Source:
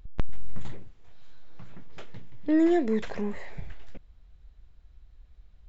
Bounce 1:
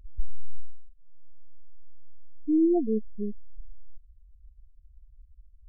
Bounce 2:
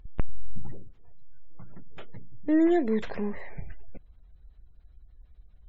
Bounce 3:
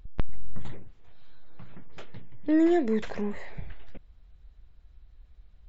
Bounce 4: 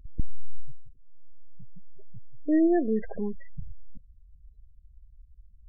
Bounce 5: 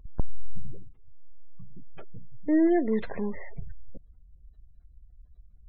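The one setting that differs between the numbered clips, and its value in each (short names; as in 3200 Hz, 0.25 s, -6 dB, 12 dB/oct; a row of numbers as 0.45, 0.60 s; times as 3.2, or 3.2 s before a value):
spectral gate, under each frame's peak: -10, -45, -60, -25, -35 dB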